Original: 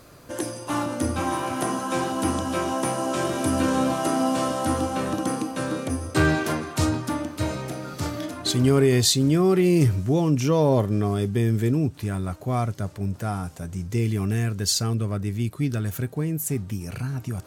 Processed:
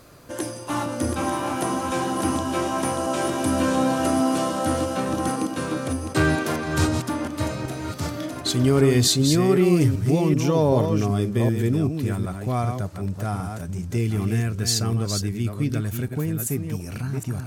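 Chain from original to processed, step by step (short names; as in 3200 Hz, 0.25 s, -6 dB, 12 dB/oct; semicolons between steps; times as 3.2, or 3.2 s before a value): reverse delay 0.383 s, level -6 dB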